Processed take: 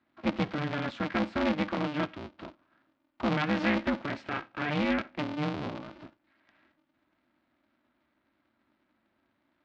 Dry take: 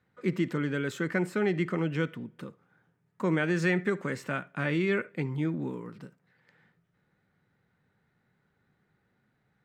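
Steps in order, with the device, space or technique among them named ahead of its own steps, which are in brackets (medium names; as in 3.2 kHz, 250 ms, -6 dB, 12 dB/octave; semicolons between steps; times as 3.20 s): ring modulator pedal into a guitar cabinet (polarity switched at an audio rate 150 Hz; cabinet simulation 110–4300 Hz, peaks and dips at 220 Hz +6 dB, 440 Hz -9 dB, 1.8 kHz -3 dB)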